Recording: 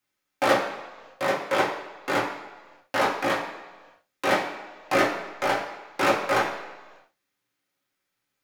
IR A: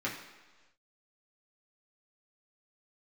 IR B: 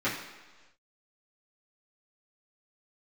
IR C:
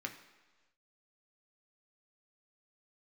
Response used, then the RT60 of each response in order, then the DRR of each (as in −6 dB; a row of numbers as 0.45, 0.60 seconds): A; 1.3, 1.3, 1.3 seconds; −5.5, −12.0, 3.0 decibels